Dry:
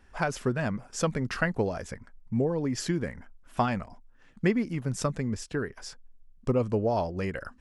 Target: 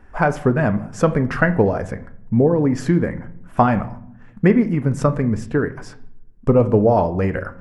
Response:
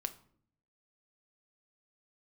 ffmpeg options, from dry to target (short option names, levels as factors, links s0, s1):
-filter_complex "[0:a]asplit=2[s0][s1];[1:a]atrim=start_sample=2205,asetrate=34398,aresample=44100,lowpass=2000[s2];[s1][s2]afir=irnorm=-1:irlink=0,volume=2.66[s3];[s0][s3]amix=inputs=2:normalize=0"